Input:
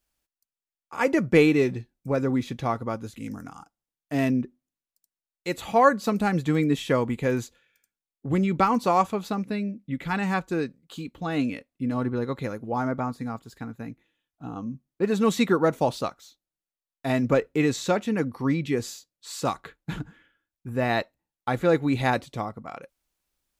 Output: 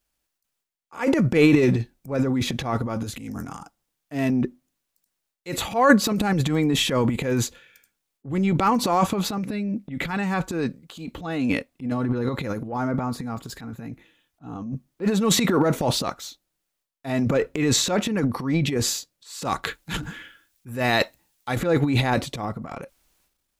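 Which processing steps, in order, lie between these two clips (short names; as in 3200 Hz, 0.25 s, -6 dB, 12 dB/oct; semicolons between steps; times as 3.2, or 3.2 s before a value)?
transient shaper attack -8 dB, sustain +12 dB; 19.63–21.56 high shelf 2100 Hz +11 dB; gain +1.5 dB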